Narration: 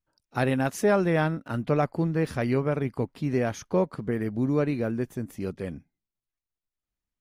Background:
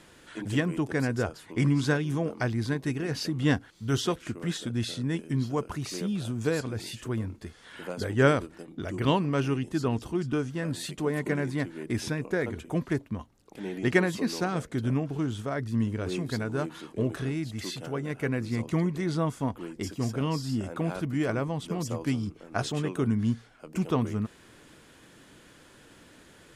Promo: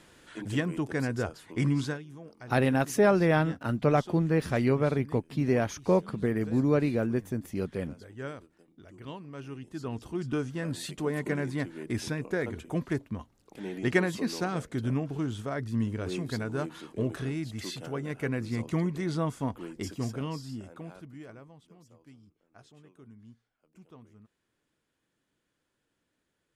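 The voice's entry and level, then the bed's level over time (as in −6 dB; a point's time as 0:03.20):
2.15 s, 0.0 dB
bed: 0:01.81 −2.5 dB
0:02.07 −17.5 dB
0:09.22 −17.5 dB
0:10.33 −2 dB
0:19.96 −2 dB
0:21.86 −26 dB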